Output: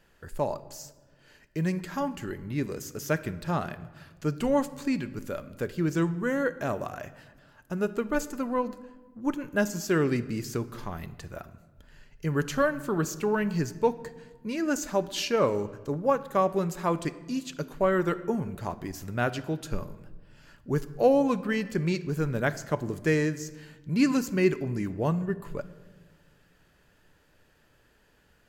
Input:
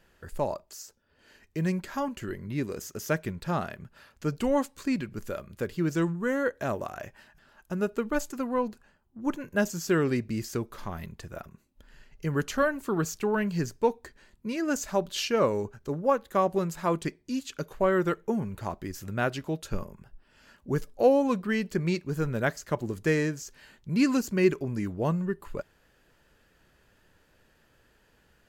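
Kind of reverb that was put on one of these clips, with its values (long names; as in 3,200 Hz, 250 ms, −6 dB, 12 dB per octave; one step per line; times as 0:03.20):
rectangular room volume 1,100 cubic metres, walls mixed, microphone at 0.36 metres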